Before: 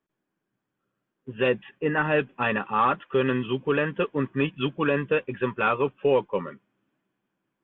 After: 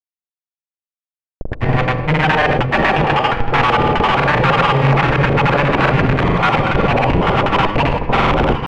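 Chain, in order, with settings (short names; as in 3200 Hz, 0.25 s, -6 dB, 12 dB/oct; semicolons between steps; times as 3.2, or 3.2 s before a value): regenerating reverse delay 0.385 s, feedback 74%, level -7 dB; EQ curve 150 Hz 0 dB, 470 Hz -25 dB, 790 Hz +13 dB, 2000 Hz 0 dB, 5100 Hz -30 dB; in parallel at +0.5 dB: compressor 6:1, threshold -27 dBFS, peak gain reduction 17 dB; on the sum: Schmitt trigger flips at -26 dBFS; tempo 0.88×; LFO low-pass square 10 Hz 550–2400 Hz; reverb RT60 0.60 s, pre-delay 47 ms, DRR 6.5 dB; grains, pitch spread up and down by 0 st; gain +7 dB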